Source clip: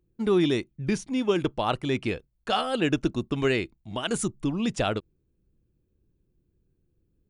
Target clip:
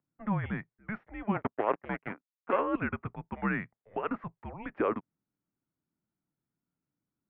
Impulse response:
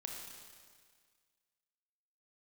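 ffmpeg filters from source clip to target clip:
-filter_complex "[0:a]asettb=1/sr,asplit=3[s0][s1][s2];[s0]atrim=end=1.344[s3];[s1]atrim=start=1.34:end=2.59,asetpts=PTS-STARTPTS,afade=t=in:d=0.004:c=qsin,afade=t=out:st=1.246:d=0.004:c=qsin,aeval=exprs='0.282*(cos(1*acos(clip(val(0)/0.282,-1,1)))-cos(1*PI/2))+0.01*(cos(5*acos(clip(val(0)/0.282,-1,1)))-cos(5*PI/2))+0.0447*(cos(7*acos(clip(val(0)/0.282,-1,1)))-cos(7*PI/2))':c=same[s4];[s2]atrim=start=2.586[s5];[s3][s4]acrossfade=d=0.004:c1=hsin:c2=qsin[s6];[s6][s5]acrossfade=d=0.004:c1=qsin:c2=hsin,highpass=f=480:t=q:w=0.5412,highpass=f=480:t=q:w=1.307,lowpass=f=2100:t=q:w=0.5176,lowpass=f=2100:t=q:w=0.7071,lowpass=f=2100:t=q:w=1.932,afreqshift=-210"

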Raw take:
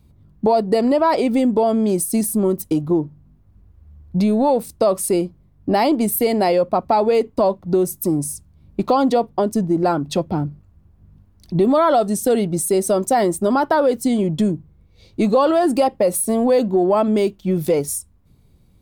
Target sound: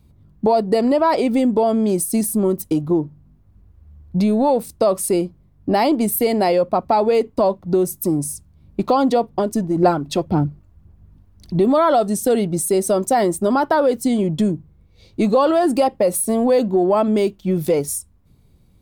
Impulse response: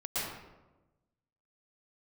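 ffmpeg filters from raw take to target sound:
-filter_complex "[0:a]asettb=1/sr,asplit=3[s0][s1][s2];[s0]atrim=end=9.334[s3];[s1]atrim=start=9.33:end=11.57,asetpts=PTS-STARTPTS,afade=t=in:d=0.004:c=qsin,afade=t=out:st=2.236:d=0.004:c=qsin,aphaser=in_gain=1:out_gain=1:delay=3.4:decay=0.39:speed=1.9:type=sinusoidal[s4];[s2]atrim=start=11.566[s5];[s3][s4]acrossfade=d=0.004:c1=hsin:c2=qsin[s6];[s6][s5]acrossfade=d=0.004:c1=qsin:c2=hsin"

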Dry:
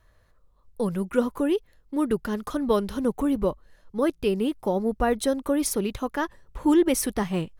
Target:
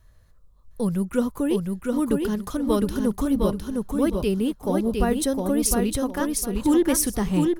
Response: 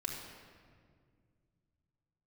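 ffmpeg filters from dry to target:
-filter_complex "[0:a]bass=f=250:g=9,treble=f=4000:g=8,asplit=2[s0][s1];[s1]aecho=0:1:709|1418|2127|2836:0.668|0.174|0.0452|0.0117[s2];[s0][s2]amix=inputs=2:normalize=0,volume=0.75"

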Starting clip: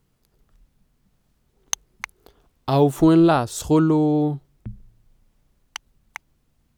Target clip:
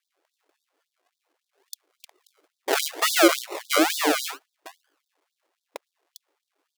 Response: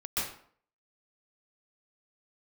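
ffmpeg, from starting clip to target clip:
-af "acrusher=samples=39:mix=1:aa=0.000001:lfo=1:lforange=23.4:lforate=2.2,afftfilt=real='re*gte(b*sr/1024,260*pow(3500/260,0.5+0.5*sin(2*PI*3.6*pts/sr)))':imag='im*gte(b*sr/1024,260*pow(3500/260,0.5+0.5*sin(2*PI*3.6*pts/sr)))':win_size=1024:overlap=0.75,volume=1.19"

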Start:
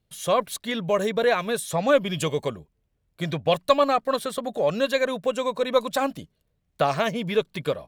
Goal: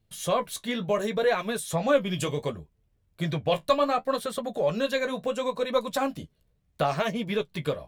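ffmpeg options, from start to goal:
-filter_complex "[0:a]lowshelf=f=110:g=6.5,asplit=2[s0][s1];[s1]acompressor=threshold=0.0282:ratio=6,volume=0.794[s2];[s0][s2]amix=inputs=2:normalize=0,flanger=delay=8.5:depth=8.2:regen=-38:speed=0.69:shape=triangular,volume=0.841"

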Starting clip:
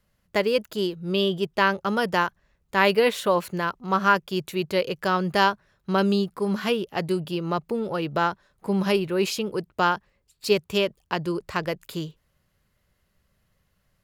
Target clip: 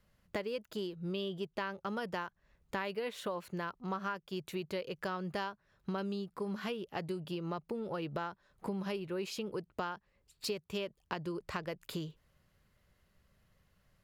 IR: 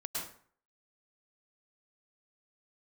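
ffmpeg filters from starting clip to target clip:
-af "highshelf=f=6200:g=-5,acompressor=threshold=0.0178:ratio=6,volume=0.891"

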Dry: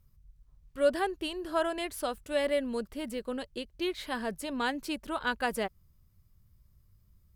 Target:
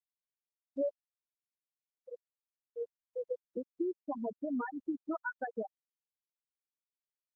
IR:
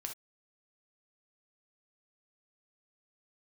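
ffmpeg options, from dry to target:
-filter_complex "[0:a]acompressor=threshold=0.0158:ratio=12,asplit=3[s0][s1][s2];[s0]afade=t=out:st=0.96:d=0.02[s3];[s1]asuperpass=centerf=500:order=20:qfactor=6.3,afade=t=in:st=0.96:d=0.02,afade=t=out:st=3.4:d=0.02[s4];[s2]afade=t=in:st=3.4:d=0.02[s5];[s3][s4][s5]amix=inputs=3:normalize=0,afftfilt=real='re*gte(hypot(re,im),0.0631)':imag='im*gte(hypot(re,im),0.0631)':win_size=1024:overlap=0.75,volume=2" -ar 48000 -c:a libopus -b:a 24k

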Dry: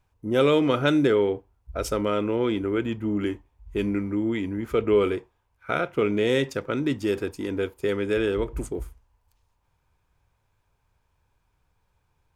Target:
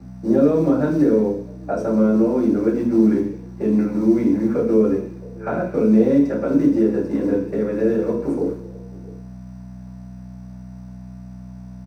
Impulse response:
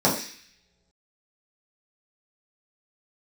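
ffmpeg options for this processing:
-filter_complex "[0:a]acrossover=split=210 2200:gain=0.126 1 0.178[s0][s1][s2];[s0][s1][s2]amix=inputs=3:normalize=0,bandreject=f=50:t=h:w=6,bandreject=f=100:t=h:w=6,bandreject=f=150:t=h:w=6,bandreject=f=200:t=h:w=6,bandreject=f=250:t=h:w=6,bandreject=f=300:t=h:w=6,bandreject=f=350:t=h:w=6,bandreject=f=400:t=h:w=6,bandreject=f=450:t=h:w=6,acrossover=split=230[s3][s4];[s4]acompressor=threshold=0.0126:ratio=6[s5];[s3][s5]amix=inputs=2:normalize=0,aeval=exprs='val(0)+0.00447*(sin(2*PI*60*n/s)+sin(2*PI*2*60*n/s)/2+sin(2*PI*3*60*n/s)/3+sin(2*PI*4*60*n/s)/4+sin(2*PI*5*60*n/s)/5)':c=same,acrossover=split=310|620|2400[s6][s7][s8][s9];[s6]acrusher=bits=5:mode=log:mix=0:aa=0.000001[s10];[s7]aecho=1:1:693:0.168[s11];[s10][s11][s8][s9]amix=inputs=4:normalize=0[s12];[1:a]atrim=start_sample=2205,afade=t=out:st=0.44:d=0.01,atrim=end_sample=19845[s13];[s12][s13]afir=irnorm=-1:irlink=0,asetrate=45938,aresample=44100,volume=0.596"

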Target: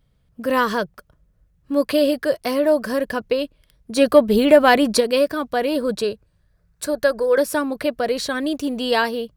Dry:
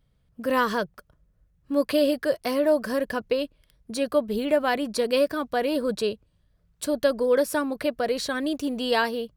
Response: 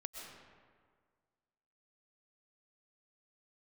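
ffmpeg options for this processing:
-filter_complex "[0:a]asplit=3[s0][s1][s2];[s0]afade=t=out:st=3.96:d=0.02[s3];[s1]acontrast=79,afade=t=in:st=3.96:d=0.02,afade=t=out:st=4.99:d=0.02[s4];[s2]afade=t=in:st=4.99:d=0.02[s5];[s3][s4][s5]amix=inputs=3:normalize=0,asettb=1/sr,asplit=3[s6][s7][s8];[s6]atrim=end=6.044[s9];[s7]atrim=start=6.04:end=7.38,asetpts=PTS-STARTPTS,afade=t=in:d=0.004:c=qsin,afade=t=out:st=1.336:d=0.004:c=qsin,equalizer=f=250:t=o:w=0.33:g=-10,equalizer=f=1600:t=o:w=0.33:g=6,equalizer=f=3150:t=o:w=0.33:g=-8[s10];[s8]atrim=start=7.376[s11];[s9][s10]acrossfade=d=0.004:c1=hsin:c2=qsin[s12];[s12][s11]acrossfade=d=0.004:c1=qsin:c2=hsin,volume=1.58"

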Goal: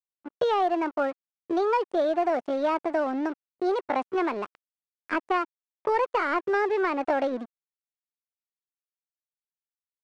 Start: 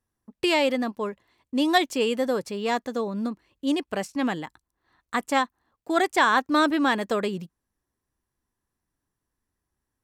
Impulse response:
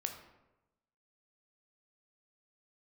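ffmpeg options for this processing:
-filter_complex "[0:a]tiltshelf=f=1200:g=9.5,acrossover=split=88|620|2200[s0][s1][s2][s3];[s0]acompressor=threshold=0.00126:ratio=4[s4];[s1]acompressor=threshold=0.0398:ratio=4[s5];[s2]acompressor=threshold=0.0251:ratio=4[s6];[s3]acompressor=threshold=0.00282:ratio=4[s7];[s4][s5][s6][s7]amix=inputs=4:normalize=0,aresample=16000,aeval=exprs='sgn(val(0))*max(abs(val(0))-0.00631,0)':c=same,aresample=44100,asplit=2[s8][s9];[s9]highpass=f=720:p=1,volume=3.98,asoftclip=type=tanh:threshold=0.224[s10];[s8][s10]amix=inputs=2:normalize=0,lowpass=f=1300:p=1,volume=0.501,asetrate=58866,aresample=44100,atempo=0.749154,volume=1.19"

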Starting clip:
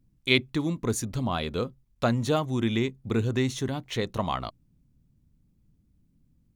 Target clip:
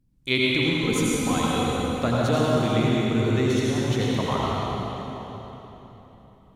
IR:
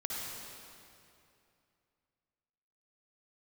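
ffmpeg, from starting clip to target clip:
-filter_complex "[0:a]asettb=1/sr,asplit=3[s0][s1][s2];[s0]atrim=end=0.654[s3];[s1]atrim=start=0.65:end=1.48,asetpts=PTS-STARTPTS,afade=t=in:d=0.004:c=qsin,afade=t=out:st=0.826:d=0.004:c=qsin,aecho=1:1:3.9:0.66,atrim=end_sample=36603[s4];[s2]atrim=start=1.476[s5];[s3][s4]acrossfade=d=0.004:c1=hsin:c2=qsin[s6];[s6][s5]acrossfade=d=0.004:c1=qsin:c2=hsin[s7];[1:a]atrim=start_sample=2205,asetrate=29988,aresample=44100[s8];[s7][s8]afir=irnorm=-1:irlink=0,volume=0.891"

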